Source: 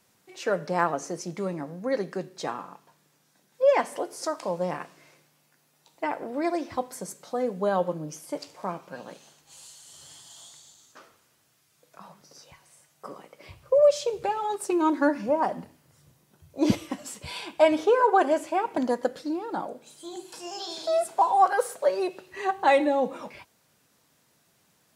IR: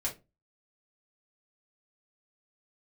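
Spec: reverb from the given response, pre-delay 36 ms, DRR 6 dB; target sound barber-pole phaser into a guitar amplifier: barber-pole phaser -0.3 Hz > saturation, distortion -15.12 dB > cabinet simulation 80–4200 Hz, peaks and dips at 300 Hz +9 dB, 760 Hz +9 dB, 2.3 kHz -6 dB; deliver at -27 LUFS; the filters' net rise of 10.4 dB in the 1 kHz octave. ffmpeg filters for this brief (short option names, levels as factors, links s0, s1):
-filter_complex "[0:a]equalizer=f=1000:t=o:g=5.5,asplit=2[s0][s1];[1:a]atrim=start_sample=2205,adelay=36[s2];[s1][s2]afir=irnorm=-1:irlink=0,volume=0.355[s3];[s0][s3]amix=inputs=2:normalize=0,asplit=2[s4][s5];[s5]afreqshift=-0.3[s6];[s4][s6]amix=inputs=2:normalize=1,asoftclip=threshold=0.2,highpass=80,equalizer=f=300:t=q:w=4:g=9,equalizer=f=760:t=q:w=4:g=9,equalizer=f=2300:t=q:w=4:g=-6,lowpass=f=4200:w=0.5412,lowpass=f=4200:w=1.3066,volume=0.631"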